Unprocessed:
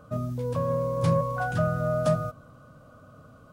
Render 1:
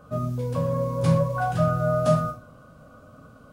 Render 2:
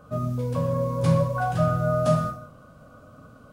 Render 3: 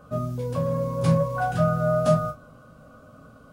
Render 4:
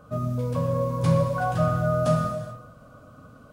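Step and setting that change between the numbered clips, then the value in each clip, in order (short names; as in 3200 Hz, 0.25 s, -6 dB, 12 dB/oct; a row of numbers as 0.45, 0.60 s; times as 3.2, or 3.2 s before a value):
non-linear reverb, gate: 150, 230, 80, 460 ms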